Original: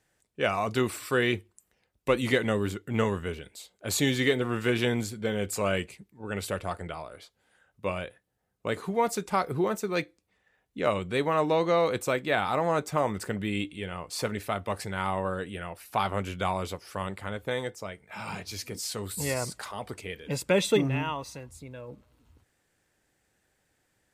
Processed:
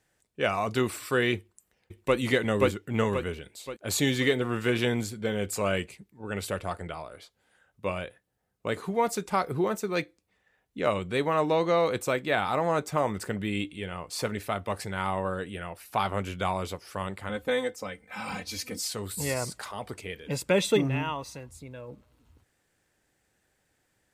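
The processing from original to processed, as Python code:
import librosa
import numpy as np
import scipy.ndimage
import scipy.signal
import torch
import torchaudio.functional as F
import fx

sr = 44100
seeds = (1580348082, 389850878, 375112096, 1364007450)

y = fx.echo_throw(x, sr, start_s=1.37, length_s=0.8, ms=530, feedback_pct=45, wet_db=0.0)
y = fx.comb(y, sr, ms=3.9, depth=0.83, at=(17.29, 18.88))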